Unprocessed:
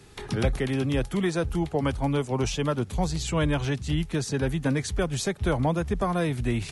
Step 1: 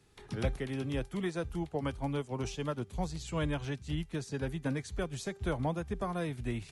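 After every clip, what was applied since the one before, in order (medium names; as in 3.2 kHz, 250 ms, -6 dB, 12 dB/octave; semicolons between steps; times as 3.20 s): de-hum 394.5 Hz, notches 19; upward expansion 1.5:1, over -35 dBFS; trim -6.5 dB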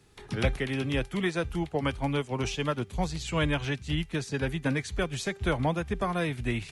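dynamic bell 2.4 kHz, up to +7 dB, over -56 dBFS, Q 0.88; trim +5 dB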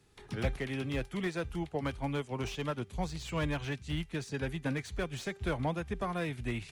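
slew-rate limiter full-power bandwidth 75 Hz; trim -5.5 dB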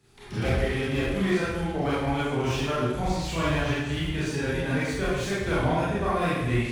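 reverberation RT60 1.1 s, pre-delay 23 ms, DRR -9.5 dB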